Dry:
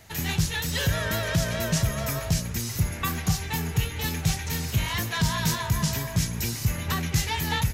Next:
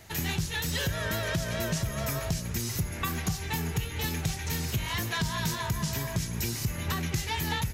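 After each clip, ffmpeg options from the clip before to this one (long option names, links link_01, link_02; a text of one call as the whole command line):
ffmpeg -i in.wav -af "equalizer=frequency=360:width=6.8:gain=5,acompressor=threshold=-27dB:ratio=4" out.wav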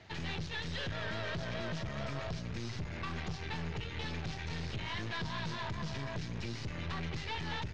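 ffmpeg -i in.wav -af "highpass=71,aeval=exprs='(tanh(56.2*val(0)+0.65)-tanh(0.65))/56.2':channel_layout=same,lowpass=frequency=4600:width=0.5412,lowpass=frequency=4600:width=1.3066" out.wav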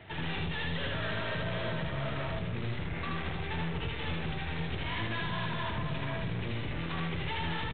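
ffmpeg -i in.wav -af "aresample=8000,aeval=exprs='0.0355*sin(PI/2*1.78*val(0)/0.0355)':channel_layout=same,aresample=44100,aecho=1:1:78.72|137:0.891|0.282,volume=-3.5dB" out.wav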